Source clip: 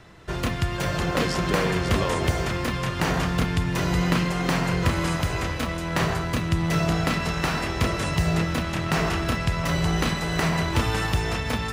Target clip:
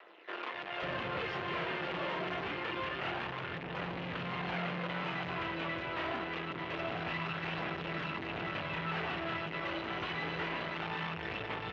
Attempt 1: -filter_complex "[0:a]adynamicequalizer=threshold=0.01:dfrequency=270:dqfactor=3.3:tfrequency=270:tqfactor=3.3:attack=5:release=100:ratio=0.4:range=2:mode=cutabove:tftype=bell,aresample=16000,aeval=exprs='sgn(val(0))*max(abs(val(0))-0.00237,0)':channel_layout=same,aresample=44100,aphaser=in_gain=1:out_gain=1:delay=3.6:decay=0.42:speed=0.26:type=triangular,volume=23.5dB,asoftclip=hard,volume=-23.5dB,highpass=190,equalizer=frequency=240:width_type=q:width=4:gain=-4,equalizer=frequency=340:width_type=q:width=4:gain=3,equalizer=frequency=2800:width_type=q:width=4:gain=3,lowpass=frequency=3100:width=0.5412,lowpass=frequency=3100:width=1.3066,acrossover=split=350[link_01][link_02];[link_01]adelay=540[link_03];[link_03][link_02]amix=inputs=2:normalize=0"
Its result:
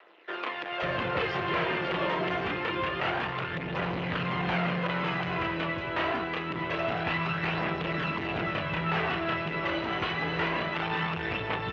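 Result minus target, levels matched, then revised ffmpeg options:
gain into a clipping stage and back: distortion −5 dB
-filter_complex "[0:a]adynamicequalizer=threshold=0.01:dfrequency=270:dqfactor=3.3:tfrequency=270:tqfactor=3.3:attack=5:release=100:ratio=0.4:range=2:mode=cutabove:tftype=bell,aresample=16000,aeval=exprs='sgn(val(0))*max(abs(val(0))-0.00237,0)':channel_layout=same,aresample=44100,aphaser=in_gain=1:out_gain=1:delay=3.6:decay=0.42:speed=0.26:type=triangular,volume=33.5dB,asoftclip=hard,volume=-33.5dB,highpass=190,equalizer=frequency=240:width_type=q:width=4:gain=-4,equalizer=frequency=340:width_type=q:width=4:gain=3,equalizer=frequency=2800:width_type=q:width=4:gain=3,lowpass=frequency=3100:width=0.5412,lowpass=frequency=3100:width=1.3066,acrossover=split=350[link_01][link_02];[link_01]adelay=540[link_03];[link_03][link_02]amix=inputs=2:normalize=0"

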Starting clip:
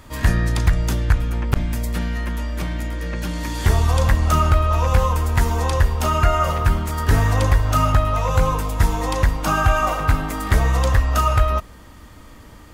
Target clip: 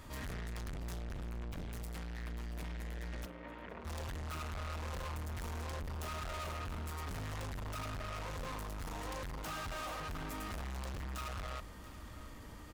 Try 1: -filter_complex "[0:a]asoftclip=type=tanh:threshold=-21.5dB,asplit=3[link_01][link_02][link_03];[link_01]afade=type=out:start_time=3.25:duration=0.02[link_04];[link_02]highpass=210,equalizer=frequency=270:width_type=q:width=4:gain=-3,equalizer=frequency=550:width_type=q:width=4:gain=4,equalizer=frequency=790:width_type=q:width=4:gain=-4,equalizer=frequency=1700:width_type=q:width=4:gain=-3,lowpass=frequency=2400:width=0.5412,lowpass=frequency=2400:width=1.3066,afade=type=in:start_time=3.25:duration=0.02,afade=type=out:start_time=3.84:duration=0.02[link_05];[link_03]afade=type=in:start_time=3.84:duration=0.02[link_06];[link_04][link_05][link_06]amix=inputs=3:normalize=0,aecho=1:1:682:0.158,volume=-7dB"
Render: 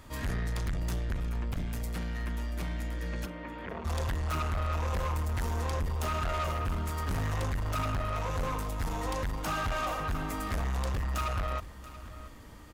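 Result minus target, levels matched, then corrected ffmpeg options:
soft clipping: distortion −4 dB
-filter_complex "[0:a]asoftclip=type=tanh:threshold=-33.5dB,asplit=3[link_01][link_02][link_03];[link_01]afade=type=out:start_time=3.25:duration=0.02[link_04];[link_02]highpass=210,equalizer=frequency=270:width_type=q:width=4:gain=-3,equalizer=frequency=550:width_type=q:width=4:gain=4,equalizer=frequency=790:width_type=q:width=4:gain=-4,equalizer=frequency=1700:width_type=q:width=4:gain=-3,lowpass=frequency=2400:width=0.5412,lowpass=frequency=2400:width=1.3066,afade=type=in:start_time=3.25:duration=0.02,afade=type=out:start_time=3.84:duration=0.02[link_05];[link_03]afade=type=in:start_time=3.84:duration=0.02[link_06];[link_04][link_05][link_06]amix=inputs=3:normalize=0,aecho=1:1:682:0.158,volume=-7dB"

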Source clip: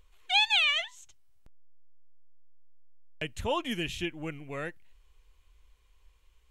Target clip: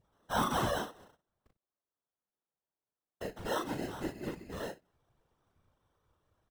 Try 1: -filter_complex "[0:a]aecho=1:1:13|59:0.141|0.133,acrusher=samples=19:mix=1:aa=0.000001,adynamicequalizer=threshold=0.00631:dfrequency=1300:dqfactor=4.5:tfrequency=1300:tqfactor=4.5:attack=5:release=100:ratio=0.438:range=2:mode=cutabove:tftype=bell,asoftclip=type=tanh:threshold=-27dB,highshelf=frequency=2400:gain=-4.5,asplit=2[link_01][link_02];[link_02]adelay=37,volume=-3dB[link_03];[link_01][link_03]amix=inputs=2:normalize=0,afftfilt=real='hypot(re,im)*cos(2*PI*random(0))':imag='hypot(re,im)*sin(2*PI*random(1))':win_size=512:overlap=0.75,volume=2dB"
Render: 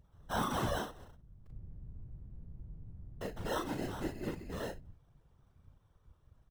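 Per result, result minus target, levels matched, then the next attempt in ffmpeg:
125 Hz band +5.0 dB; soft clipping: distortion +7 dB
-filter_complex "[0:a]aecho=1:1:13|59:0.141|0.133,acrusher=samples=19:mix=1:aa=0.000001,adynamicequalizer=threshold=0.00631:dfrequency=1300:dqfactor=4.5:tfrequency=1300:tqfactor=4.5:attack=5:release=100:ratio=0.438:range=2:mode=cutabove:tftype=bell,highpass=frequency=130:poles=1,asoftclip=type=tanh:threshold=-27dB,highshelf=frequency=2400:gain=-4.5,asplit=2[link_01][link_02];[link_02]adelay=37,volume=-3dB[link_03];[link_01][link_03]amix=inputs=2:normalize=0,afftfilt=real='hypot(re,im)*cos(2*PI*random(0))':imag='hypot(re,im)*sin(2*PI*random(1))':win_size=512:overlap=0.75,volume=2dB"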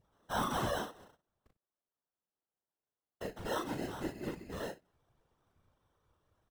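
soft clipping: distortion +6 dB
-filter_complex "[0:a]aecho=1:1:13|59:0.141|0.133,acrusher=samples=19:mix=1:aa=0.000001,adynamicequalizer=threshold=0.00631:dfrequency=1300:dqfactor=4.5:tfrequency=1300:tqfactor=4.5:attack=5:release=100:ratio=0.438:range=2:mode=cutabove:tftype=bell,highpass=frequency=130:poles=1,asoftclip=type=tanh:threshold=-21dB,highshelf=frequency=2400:gain=-4.5,asplit=2[link_01][link_02];[link_02]adelay=37,volume=-3dB[link_03];[link_01][link_03]amix=inputs=2:normalize=0,afftfilt=real='hypot(re,im)*cos(2*PI*random(0))':imag='hypot(re,im)*sin(2*PI*random(1))':win_size=512:overlap=0.75,volume=2dB"

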